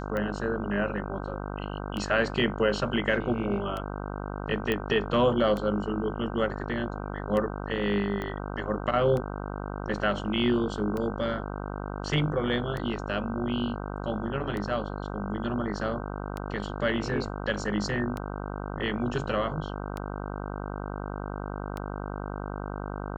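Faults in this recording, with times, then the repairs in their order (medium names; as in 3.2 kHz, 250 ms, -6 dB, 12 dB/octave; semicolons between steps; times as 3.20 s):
buzz 50 Hz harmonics 31 -35 dBFS
tick 33 1/3 rpm -20 dBFS
4.72 s: pop -15 dBFS
8.22 s: pop -21 dBFS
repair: de-click; de-hum 50 Hz, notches 31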